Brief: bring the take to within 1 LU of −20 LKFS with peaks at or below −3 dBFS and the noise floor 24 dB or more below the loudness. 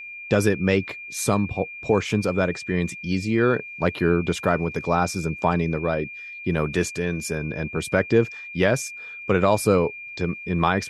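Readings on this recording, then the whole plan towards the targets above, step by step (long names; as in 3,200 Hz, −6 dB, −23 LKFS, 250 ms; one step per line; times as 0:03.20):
interfering tone 2,400 Hz; level of the tone −35 dBFS; integrated loudness −23.5 LKFS; sample peak −5.0 dBFS; target loudness −20.0 LKFS
→ notch filter 2,400 Hz, Q 30
level +3.5 dB
brickwall limiter −3 dBFS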